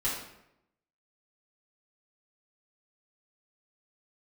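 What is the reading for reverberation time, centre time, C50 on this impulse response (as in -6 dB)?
0.80 s, 48 ms, 2.5 dB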